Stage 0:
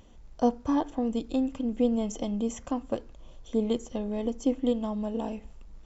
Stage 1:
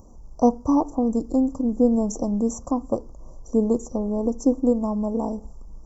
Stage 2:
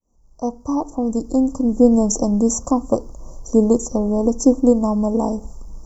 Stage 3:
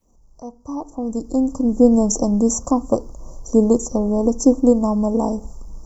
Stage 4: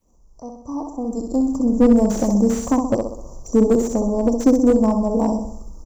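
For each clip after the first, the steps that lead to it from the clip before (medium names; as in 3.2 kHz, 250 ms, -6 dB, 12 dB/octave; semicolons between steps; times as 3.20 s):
elliptic band-stop 1.1–5.5 kHz, stop band 40 dB; trim +7 dB
fade-in on the opening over 1.87 s; treble shelf 3 kHz +8.5 dB; trim +6 dB
fade-in on the opening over 1.66 s; upward compressor, threshold -36 dBFS
feedback delay 64 ms, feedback 51%, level -5.5 dB; slew-rate limiter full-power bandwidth 150 Hz; trim -1 dB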